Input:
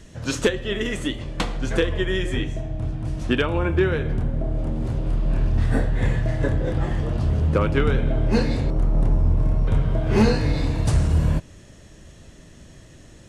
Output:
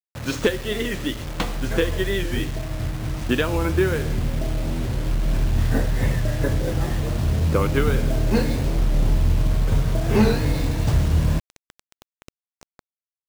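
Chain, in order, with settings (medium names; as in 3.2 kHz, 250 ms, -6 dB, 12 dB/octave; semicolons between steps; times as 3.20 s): median filter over 5 samples; bit crusher 6-bit; warped record 45 rpm, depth 100 cents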